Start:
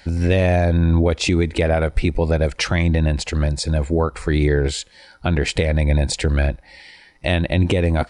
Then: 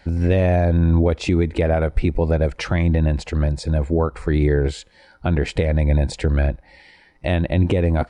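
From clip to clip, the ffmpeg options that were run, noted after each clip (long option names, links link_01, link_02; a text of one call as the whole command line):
ffmpeg -i in.wav -af "highshelf=frequency=2300:gain=-11" out.wav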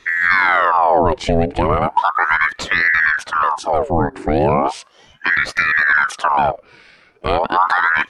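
ffmpeg -i in.wav -af "aeval=exprs='val(0)*sin(2*PI*1100*n/s+1100*0.7/0.36*sin(2*PI*0.36*n/s))':channel_layout=same,volume=5dB" out.wav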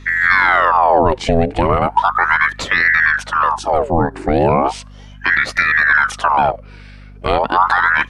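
ffmpeg -i in.wav -af "aeval=exprs='val(0)+0.0126*(sin(2*PI*50*n/s)+sin(2*PI*2*50*n/s)/2+sin(2*PI*3*50*n/s)/3+sin(2*PI*4*50*n/s)/4+sin(2*PI*5*50*n/s)/5)':channel_layout=same,volume=1.5dB" out.wav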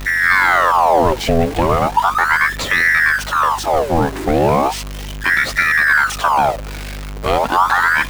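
ffmpeg -i in.wav -af "aeval=exprs='val(0)+0.5*0.0841*sgn(val(0))':channel_layout=same,volume=-1.5dB" out.wav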